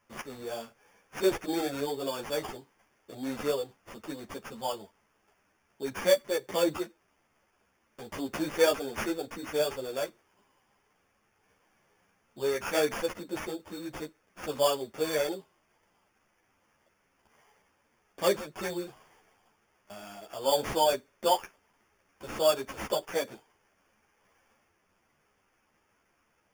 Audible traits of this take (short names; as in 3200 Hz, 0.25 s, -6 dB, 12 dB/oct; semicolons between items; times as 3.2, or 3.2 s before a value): aliases and images of a low sample rate 4000 Hz, jitter 0%; a shimmering, thickened sound